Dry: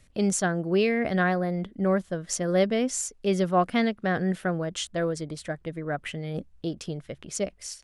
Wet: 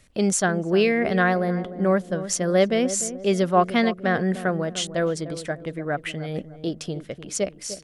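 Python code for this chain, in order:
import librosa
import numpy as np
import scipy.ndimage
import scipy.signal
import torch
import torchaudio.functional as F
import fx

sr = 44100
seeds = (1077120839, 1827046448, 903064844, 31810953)

y = fx.low_shelf(x, sr, hz=150.0, db=-6.0)
y = fx.echo_filtered(y, sr, ms=300, feedback_pct=45, hz=810.0, wet_db=-11.5)
y = F.gain(torch.from_numpy(y), 4.5).numpy()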